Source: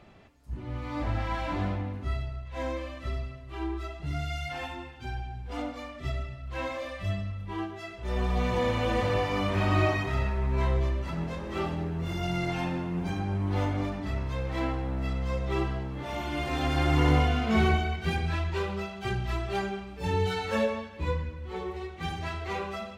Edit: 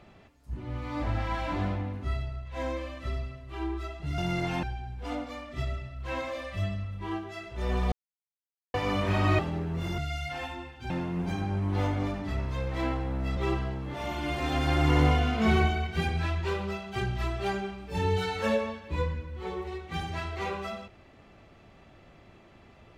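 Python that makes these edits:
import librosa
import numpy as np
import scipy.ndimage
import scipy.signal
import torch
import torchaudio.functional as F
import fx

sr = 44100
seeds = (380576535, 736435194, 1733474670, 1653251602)

y = fx.edit(x, sr, fx.swap(start_s=4.18, length_s=0.92, other_s=12.23, other_length_s=0.45),
    fx.silence(start_s=8.39, length_s=0.82),
    fx.cut(start_s=9.86, length_s=1.78),
    fx.cut(start_s=15.15, length_s=0.31), tone=tone)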